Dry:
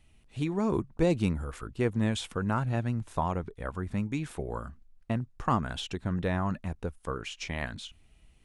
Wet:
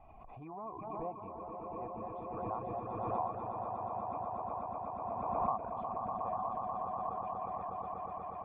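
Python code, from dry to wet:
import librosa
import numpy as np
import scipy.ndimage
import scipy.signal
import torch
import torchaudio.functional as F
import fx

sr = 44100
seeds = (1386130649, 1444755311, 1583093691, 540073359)

p1 = (np.kron(scipy.signal.resample_poly(x, 1, 6), np.eye(6)[0]) * 6)[:len(x)]
p2 = fx.formant_cascade(p1, sr, vowel='a')
p3 = p2 + fx.echo_swell(p2, sr, ms=121, loudest=8, wet_db=-5, dry=0)
p4 = fx.dereverb_blind(p3, sr, rt60_s=0.56)
p5 = fx.pre_swell(p4, sr, db_per_s=25.0)
y = p5 * librosa.db_to_amplitude(1.0)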